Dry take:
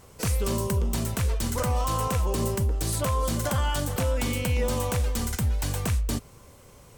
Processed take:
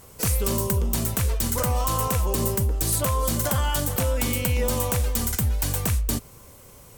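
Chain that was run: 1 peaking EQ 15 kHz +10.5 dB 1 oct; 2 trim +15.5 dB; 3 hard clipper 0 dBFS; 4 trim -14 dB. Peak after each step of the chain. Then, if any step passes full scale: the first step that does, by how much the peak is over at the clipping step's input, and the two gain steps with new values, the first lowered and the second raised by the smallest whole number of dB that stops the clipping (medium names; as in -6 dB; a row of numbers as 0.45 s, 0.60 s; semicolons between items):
-9.5 dBFS, +6.0 dBFS, 0.0 dBFS, -14.0 dBFS; step 2, 6.0 dB; step 2 +9.5 dB, step 4 -8 dB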